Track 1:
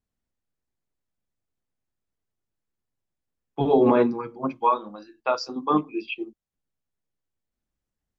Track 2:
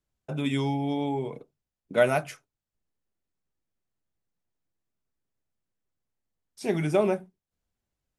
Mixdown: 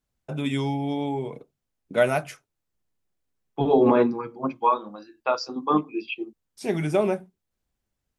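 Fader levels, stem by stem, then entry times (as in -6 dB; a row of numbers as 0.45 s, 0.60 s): 0.0 dB, +1.0 dB; 0.00 s, 0.00 s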